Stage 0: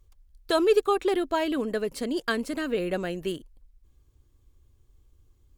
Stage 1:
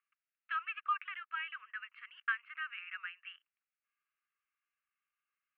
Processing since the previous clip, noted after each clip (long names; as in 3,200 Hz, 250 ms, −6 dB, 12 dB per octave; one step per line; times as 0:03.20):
Chebyshev band-pass filter 1,200–2,800 Hz, order 4
level −3 dB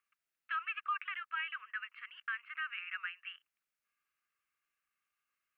brickwall limiter −31 dBFS, peak gain reduction 9.5 dB
level +3 dB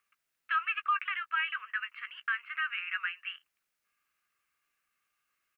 double-tracking delay 15 ms −12 dB
level +6.5 dB